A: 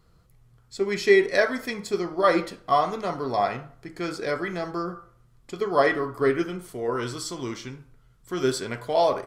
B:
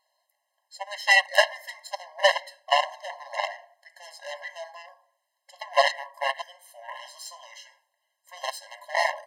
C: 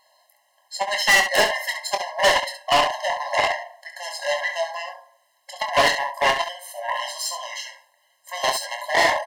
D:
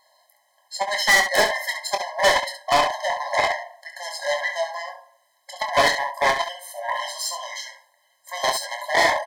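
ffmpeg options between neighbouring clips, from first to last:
ffmpeg -i in.wav -af "aeval=exprs='0.531*(cos(1*acos(clip(val(0)/0.531,-1,1)))-cos(1*PI/2))+0.0668*(cos(4*acos(clip(val(0)/0.531,-1,1)))-cos(4*PI/2))+0.119*(cos(7*acos(clip(val(0)/0.531,-1,1)))-cos(7*PI/2))':channel_layout=same,asubboost=boost=3.5:cutoff=250,afftfilt=real='re*eq(mod(floor(b*sr/1024/540),2),1)':imag='im*eq(mod(floor(b*sr/1024/540),2),1)':win_size=1024:overlap=0.75,volume=4.5dB" out.wav
ffmpeg -i in.wav -filter_complex "[0:a]asplit=2[link_01][link_02];[link_02]alimiter=limit=-15dB:level=0:latency=1:release=161,volume=2dB[link_03];[link_01][link_03]amix=inputs=2:normalize=0,asoftclip=type=tanh:threshold=-18dB,aecho=1:1:24|68:0.422|0.355,volume=5.5dB" out.wav
ffmpeg -i in.wav -af "asuperstop=centerf=2800:order=20:qfactor=8" out.wav

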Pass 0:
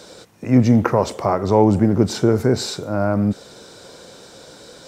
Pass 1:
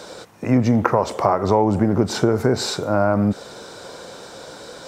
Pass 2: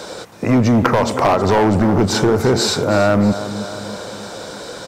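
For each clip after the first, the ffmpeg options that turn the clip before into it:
ffmpeg -i in.wav -af "equalizer=frequency=980:width=0.66:gain=6.5,acompressor=threshold=-15dB:ratio=4,volume=1.5dB" out.wav
ffmpeg -i in.wav -filter_complex "[0:a]aecho=1:1:320|640|960|1280|1600:0.188|0.102|0.0549|0.0297|0.016,acrossover=split=1600[link_01][link_02];[link_01]asoftclip=type=hard:threshold=-16.5dB[link_03];[link_03][link_02]amix=inputs=2:normalize=0,volume=6.5dB" out.wav

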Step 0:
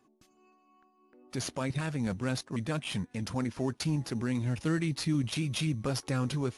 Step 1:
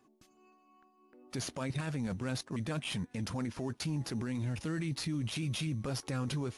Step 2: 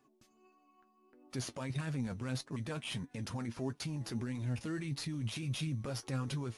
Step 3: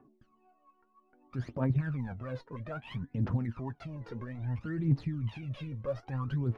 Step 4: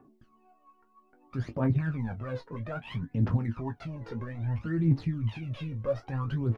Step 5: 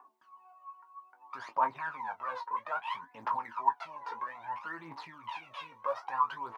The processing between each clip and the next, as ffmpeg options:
ffmpeg -i in.wav -af "alimiter=level_in=4dB:limit=-24dB:level=0:latency=1:release=14,volume=-4dB" out.wav
ffmpeg -i in.wav -af "flanger=delay=6.7:depth=2.6:regen=51:speed=1.6:shape=triangular,volume=1dB" out.wav
ffmpeg -i in.wav -af "lowpass=1500,aphaser=in_gain=1:out_gain=1:delay=2.2:decay=0.77:speed=0.61:type=triangular" out.wav
ffmpeg -i in.wav -af "aecho=1:1:18|30:0.376|0.141,volume=3dB" out.wav
ffmpeg -i in.wav -af "highpass=frequency=970:width_type=q:width=9.5" out.wav

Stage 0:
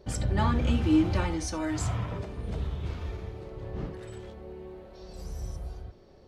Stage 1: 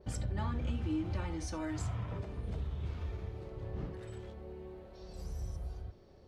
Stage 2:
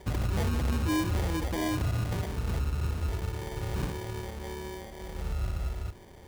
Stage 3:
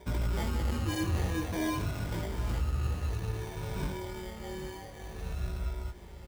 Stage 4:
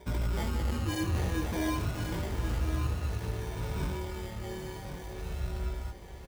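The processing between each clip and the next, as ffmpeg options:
ffmpeg -i in.wav -af "equalizer=frequency=83:width=0.93:gain=4,acompressor=threshold=-30dB:ratio=2.5,adynamicequalizer=threshold=0.00178:dfrequency=3700:dqfactor=0.7:tfrequency=3700:tqfactor=0.7:attack=5:release=100:ratio=0.375:range=1.5:mode=cutabove:tftype=highshelf,volume=-5dB" out.wav
ffmpeg -i in.wav -af "acrusher=samples=33:mix=1:aa=0.000001,volume=32.5dB,asoftclip=hard,volume=-32.5dB,volume=8.5dB" out.wav
ffmpeg -i in.wav -af "afftfilt=real='re*pow(10,7/40*sin(2*PI*(1.6*log(max(b,1)*sr/1024/100)/log(2)-(-0.53)*(pts-256)/sr)))':imag='im*pow(10,7/40*sin(2*PI*(1.6*log(max(b,1)*sr/1024/100)/log(2)-(-0.53)*(pts-256)/sr)))':win_size=1024:overlap=0.75,aecho=1:1:796:0.224,flanger=delay=16.5:depth=5.8:speed=0.35" out.wav
ffmpeg -i in.wav -af "aecho=1:1:1085:0.398" out.wav

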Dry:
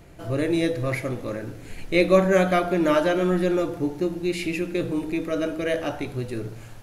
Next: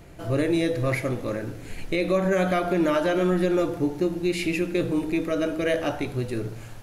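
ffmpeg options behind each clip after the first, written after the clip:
ffmpeg -i in.wav -af "alimiter=limit=-15.5dB:level=0:latency=1:release=108,volume=1.5dB" out.wav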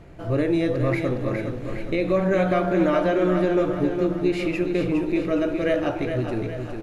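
ffmpeg -i in.wav -filter_complex "[0:a]aemphasis=mode=reproduction:type=75kf,asplit=2[link_01][link_02];[link_02]aecho=0:1:412|824|1236|1648|2060|2472:0.447|0.223|0.112|0.0558|0.0279|0.014[link_03];[link_01][link_03]amix=inputs=2:normalize=0,volume=1.5dB" out.wav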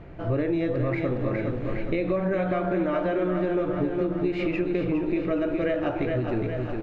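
ffmpeg -i in.wav -af "lowpass=3000,acompressor=threshold=-24dB:ratio=6,volume=2dB" out.wav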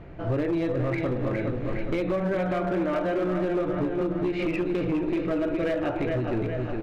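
ffmpeg -i in.wav -af "asoftclip=type=hard:threshold=-21dB" out.wav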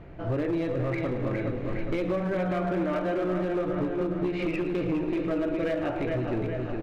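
ffmpeg -i in.wav -af "aecho=1:1:110|220|330|440|550|660:0.224|0.13|0.0753|0.0437|0.0253|0.0147,volume=-2dB" out.wav

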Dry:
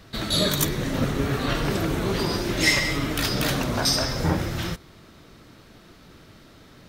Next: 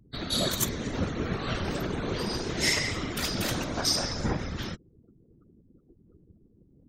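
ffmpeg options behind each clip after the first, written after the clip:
ffmpeg -i in.wav -af "adynamicequalizer=threshold=0.0112:dfrequency=6900:dqfactor=1.6:tfrequency=6900:tqfactor=1.6:attack=5:release=100:ratio=0.375:range=2.5:mode=boostabove:tftype=bell,afftfilt=real='re*gte(hypot(re,im),0.0126)':imag='im*gte(hypot(re,im),0.0126)':win_size=1024:overlap=0.75,afftfilt=real='hypot(re,im)*cos(2*PI*random(0))':imag='hypot(re,im)*sin(2*PI*random(1))':win_size=512:overlap=0.75" out.wav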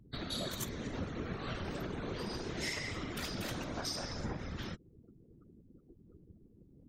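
ffmpeg -i in.wav -af "bass=frequency=250:gain=0,treble=frequency=4000:gain=-4,acompressor=threshold=-39dB:ratio=2.5,volume=-1dB" out.wav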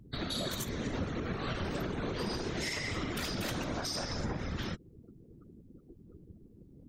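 ffmpeg -i in.wav -af "alimiter=level_in=6.5dB:limit=-24dB:level=0:latency=1:release=65,volume=-6.5dB,volume=5dB" out.wav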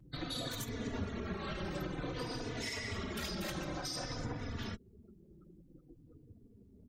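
ffmpeg -i in.wav -filter_complex "[0:a]asplit=2[link_01][link_02];[link_02]adelay=3.4,afreqshift=-0.53[link_03];[link_01][link_03]amix=inputs=2:normalize=1,volume=-1dB" out.wav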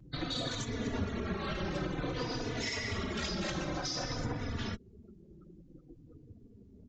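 ffmpeg -i in.wav -af "aresample=16000,aresample=44100,volume=4dB" out.wav

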